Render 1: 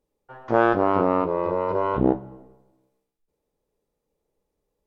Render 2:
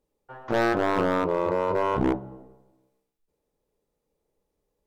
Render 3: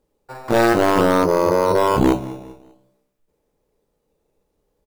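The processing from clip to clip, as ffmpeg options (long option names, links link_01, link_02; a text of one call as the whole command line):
ffmpeg -i in.wav -af "asoftclip=type=hard:threshold=-17dB" out.wav
ffmpeg -i in.wav -filter_complex "[0:a]asplit=2[link_01][link_02];[link_02]adelay=196,lowpass=frequency=4100:poles=1,volume=-18.5dB,asplit=2[link_03][link_04];[link_04]adelay=196,lowpass=frequency=4100:poles=1,volume=0.38,asplit=2[link_05][link_06];[link_06]adelay=196,lowpass=frequency=4100:poles=1,volume=0.38[link_07];[link_01][link_03][link_05][link_07]amix=inputs=4:normalize=0,asplit=2[link_08][link_09];[link_09]acrusher=samples=11:mix=1:aa=0.000001:lfo=1:lforange=6.6:lforate=0.52,volume=-6.5dB[link_10];[link_08][link_10]amix=inputs=2:normalize=0,volume=5dB" out.wav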